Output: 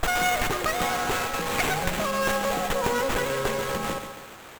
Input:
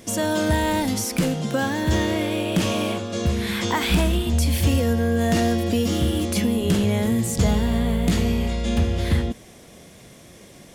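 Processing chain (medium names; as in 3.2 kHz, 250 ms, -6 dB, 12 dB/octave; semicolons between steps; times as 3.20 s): tilt EQ +3.5 dB/octave; in parallel at +1 dB: compression, threshold -29 dBFS, peak gain reduction 13.5 dB; on the sum: feedback delay 323 ms, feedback 49%, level -9 dB; on a send at -16 dB: reverberation, pre-delay 6 ms; on the sum: speed mistake 33 rpm record played at 78 rpm; sliding maximum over 9 samples; trim -3.5 dB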